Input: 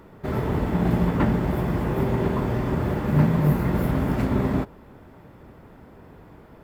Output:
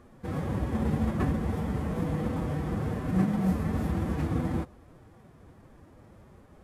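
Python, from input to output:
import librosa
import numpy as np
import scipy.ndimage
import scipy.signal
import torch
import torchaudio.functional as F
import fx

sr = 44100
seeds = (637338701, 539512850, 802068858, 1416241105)

y = fx.cvsd(x, sr, bps=64000)
y = fx.pitch_keep_formants(y, sr, semitones=4.0)
y = fx.low_shelf(y, sr, hz=92.0, db=6.5)
y = y * 10.0 ** (-7.5 / 20.0)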